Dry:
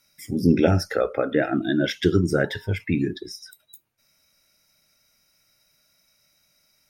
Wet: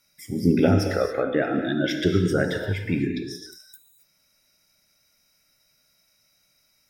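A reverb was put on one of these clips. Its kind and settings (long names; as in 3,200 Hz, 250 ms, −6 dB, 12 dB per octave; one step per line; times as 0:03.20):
reverb whose tail is shaped and stops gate 300 ms flat, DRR 4.5 dB
level −2 dB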